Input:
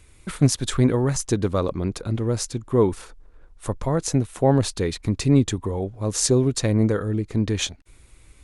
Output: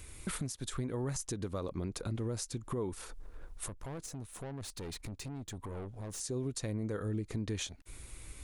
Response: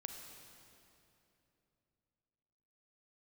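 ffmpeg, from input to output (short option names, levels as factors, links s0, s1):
-filter_complex "[0:a]highshelf=f=8800:g=9.5,acompressor=threshold=0.02:ratio=5,alimiter=level_in=1.78:limit=0.0631:level=0:latency=1:release=113,volume=0.562,asettb=1/sr,asplit=3[s0][s1][s2];[s0]atrim=end=3.684[s3];[s1]atrim=start=3.68:end=6.2,asetpts=PTS-STARTPTS,afade=t=in:d=0.004:c=qsin,afade=t=out:st=2.516:d=0.004:c=qsin,aeval=exprs='(tanh(100*val(0)+0.4)-tanh(0.4))/100':c=same[s4];[s2]atrim=start=6.196[s5];[s3][s4]acrossfade=d=0.004:c1=hsin:c2=qsin[s6];[s6][s5]acrossfade=d=0.004:c1=qsin:c2=hsin,volume=1.19"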